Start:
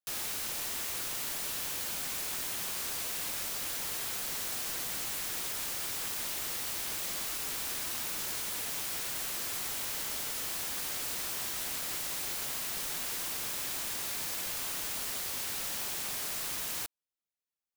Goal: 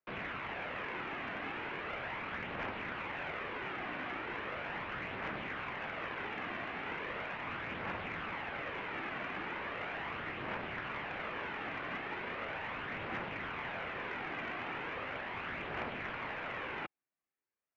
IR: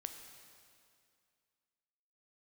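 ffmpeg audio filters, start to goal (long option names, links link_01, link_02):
-af "aphaser=in_gain=1:out_gain=1:delay=2.5:decay=0.33:speed=0.38:type=triangular,highpass=frequency=230:width_type=q:width=0.5412,highpass=frequency=230:width_type=q:width=1.307,lowpass=frequency=2600:width_type=q:width=0.5176,lowpass=frequency=2600:width_type=q:width=0.7071,lowpass=frequency=2600:width_type=q:width=1.932,afreqshift=-150,aeval=exprs='0.0266*(cos(1*acos(clip(val(0)/0.0266,-1,1)))-cos(1*PI/2))+0.00211*(cos(3*acos(clip(val(0)/0.0266,-1,1)))-cos(3*PI/2))':channel_layout=same,volume=6.5dB"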